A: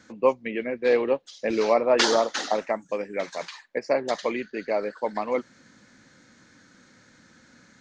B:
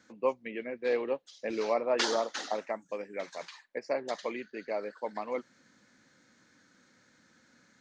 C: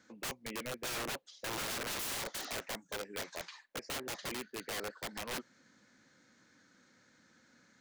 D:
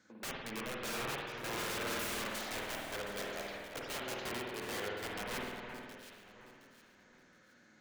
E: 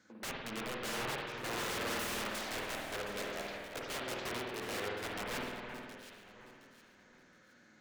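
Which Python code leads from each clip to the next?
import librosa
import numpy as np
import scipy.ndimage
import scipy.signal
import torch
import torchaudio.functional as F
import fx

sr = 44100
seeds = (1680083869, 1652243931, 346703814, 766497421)

y1 = fx.low_shelf(x, sr, hz=110.0, db=-9.0)
y1 = y1 * librosa.db_to_amplitude(-8.0)
y2 = (np.mod(10.0 ** (31.5 / 20.0) * y1 + 1.0, 2.0) - 1.0) / 10.0 ** (31.5 / 20.0)
y2 = y2 * librosa.db_to_amplitude(-2.0)
y3 = fx.echo_alternate(y2, sr, ms=359, hz=2400.0, feedback_pct=55, wet_db=-6.0)
y3 = fx.rev_spring(y3, sr, rt60_s=1.4, pass_ms=(50,), chirp_ms=70, drr_db=-2.0)
y3 = y3 * librosa.db_to_amplitude(-3.0)
y4 = fx.doppler_dist(y3, sr, depth_ms=0.41)
y4 = y4 * librosa.db_to_amplitude(1.0)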